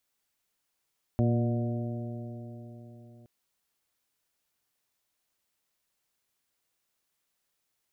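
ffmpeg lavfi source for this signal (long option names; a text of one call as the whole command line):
ffmpeg -f lavfi -i "aevalsrc='0.0708*pow(10,-3*t/4.13)*sin(2*PI*117.11*t)+0.0501*pow(10,-3*t/4.13)*sin(2*PI*234.84*t)+0.0251*pow(10,-3*t/4.13)*sin(2*PI*353.83*t)+0.0106*pow(10,-3*t/4.13)*sin(2*PI*474.69*t)+0.0224*pow(10,-3*t/4.13)*sin(2*PI*598.02*t)+0.0106*pow(10,-3*t/4.13)*sin(2*PI*724.39*t)':duration=2.07:sample_rate=44100" out.wav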